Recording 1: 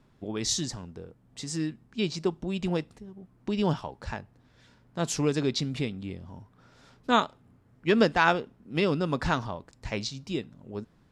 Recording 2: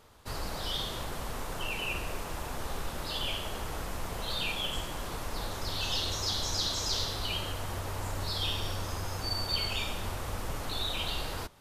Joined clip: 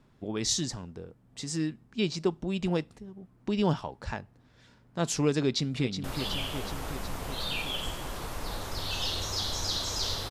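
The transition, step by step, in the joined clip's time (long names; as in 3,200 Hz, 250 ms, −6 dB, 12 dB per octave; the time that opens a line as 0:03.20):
recording 1
0:05.42–0:06.04: delay throw 370 ms, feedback 70%, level −8 dB
0:06.04: continue with recording 2 from 0:02.94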